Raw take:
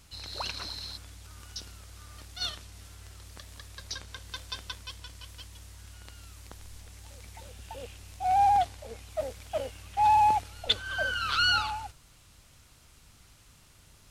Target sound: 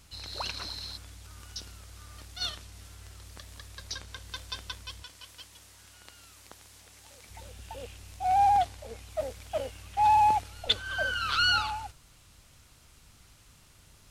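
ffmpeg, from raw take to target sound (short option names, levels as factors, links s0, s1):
-filter_complex "[0:a]asettb=1/sr,asplit=3[s0][s1][s2];[s0]atrim=end=5.034[s3];[s1]atrim=start=5.03:end=7.3,asetpts=PTS-STARTPTS,afade=t=in:d=0.004:c=qsin,afade=t=out:st=2.266:d=0.004:c=qsin,highpass=f=310:p=1[s4];[s2]atrim=start=7.296[s5];[s3][s4]acrossfade=d=0.004:c1=hsin:c2=qsin[s6];[s6][s5]acrossfade=d=0.004:c1=qsin:c2=hsin"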